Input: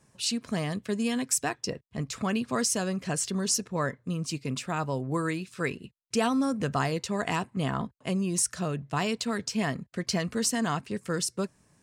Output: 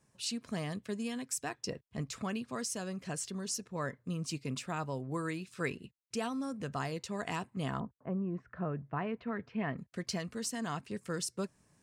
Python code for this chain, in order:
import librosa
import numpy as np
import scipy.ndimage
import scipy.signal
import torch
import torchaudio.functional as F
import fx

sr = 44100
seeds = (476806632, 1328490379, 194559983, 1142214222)

y = fx.lowpass(x, sr, hz=fx.line((7.79, 1300.0), (9.77, 2600.0)), slope=24, at=(7.79, 9.77), fade=0.02)
y = fx.rider(y, sr, range_db=4, speed_s=0.5)
y = y * 10.0 ** (-8.0 / 20.0)